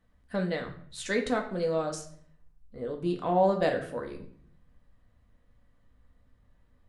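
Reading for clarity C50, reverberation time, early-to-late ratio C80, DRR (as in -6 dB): 10.0 dB, 0.55 s, 13.5 dB, 2.0 dB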